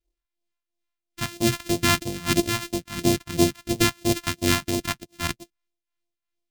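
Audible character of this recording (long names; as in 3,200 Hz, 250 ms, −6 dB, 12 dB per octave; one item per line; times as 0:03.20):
a buzz of ramps at a fixed pitch in blocks of 128 samples
phaser sweep stages 2, 3 Hz, lowest notch 410–1,400 Hz
tremolo triangle 2.7 Hz, depth 70%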